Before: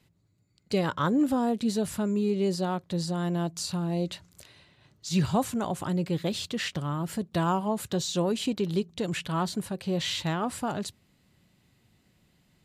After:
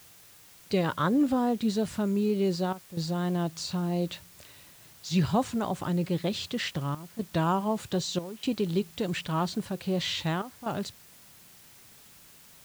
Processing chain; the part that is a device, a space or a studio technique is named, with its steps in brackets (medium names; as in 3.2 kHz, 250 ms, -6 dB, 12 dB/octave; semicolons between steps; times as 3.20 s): worn cassette (low-pass 6.4 kHz; wow and flutter; level dips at 2.73/6.95/8.19/10.42 s, 239 ms -13 dB; white noise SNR 24 dB)